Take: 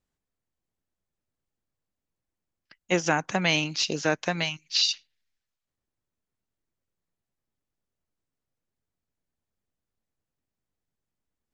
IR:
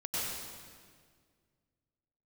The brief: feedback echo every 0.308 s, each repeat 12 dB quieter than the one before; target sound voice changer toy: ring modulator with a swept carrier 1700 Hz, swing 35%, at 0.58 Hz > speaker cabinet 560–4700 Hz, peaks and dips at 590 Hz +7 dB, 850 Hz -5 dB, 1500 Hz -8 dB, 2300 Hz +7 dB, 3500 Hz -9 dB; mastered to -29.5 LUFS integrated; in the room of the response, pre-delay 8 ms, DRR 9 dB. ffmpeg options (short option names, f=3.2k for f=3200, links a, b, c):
-filter_complex "[0:a]aecho=1:1:308|616|924:0.251|0.0628|0.0157,asplit=2[a][b];[1:a]atrim=start_sample=2205,adelay=8[c];[b][c]afir=irnorm=-1:irlink=0,volume=-14dB[d];[a][d]amix=inputs=2:normalize=0,aeval=exprs='val(0)*sin(2*PI*1700*n/s+1700*0.35/0.58*sin(2*PI*0.58*n/s))':c=same,highpass=560,equalizer=f=590:t=q:w=4:g=7,equalizer=f=850:t=q:w=4:g=-5,equalizer=f=1.5k:t=q:w=4:g=-8,equalizer=f=2.3k:t=q:w=4:g=7,equalizer=f=3.5k:t=q:w=4:g=-9,lowpass=f=4.7k:w=0.5412,lowpass=f=4.7k:w=1.3066,volume=-1dB"